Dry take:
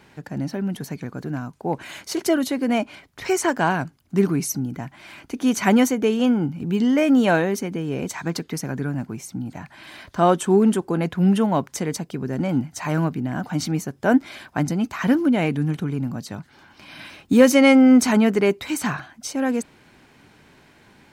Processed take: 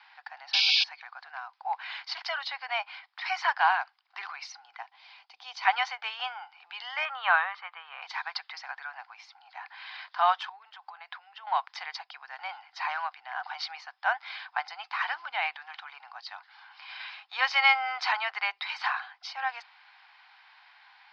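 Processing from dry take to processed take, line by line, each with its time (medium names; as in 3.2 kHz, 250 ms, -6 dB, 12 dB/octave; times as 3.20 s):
0.53–0.84 s: painted sound noise 2.2–6.7 kHz -21 dBFS
4.82–5.65 s: peaking EQ 1.6 kHz -14 dB 1.8 oct
7.05–8.02 s: cabinet simulation 490–3300 Hz, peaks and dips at 520 Hz +5 dB, 760 Hz -3 dB, 1.2 kHz +10 dB, 2.5 kHz -3 dB
10.49–11.47 s: compression 8:1, threshold -30 dBFS
whole clip: Chebyshev band-pass 760–5000 Hz, order 5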